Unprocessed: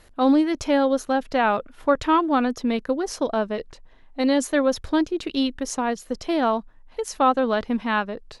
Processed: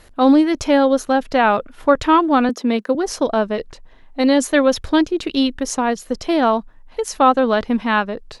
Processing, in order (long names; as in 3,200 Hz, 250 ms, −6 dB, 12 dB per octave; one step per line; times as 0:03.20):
0:02.49–0:02.95: elliptic high-pass filter 200 Hz
0:04.43–0:05.02: dynamic equaliser 2,800 Hz, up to +5 dB, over −40 dBFS, Q 1.3
level +5.5 dB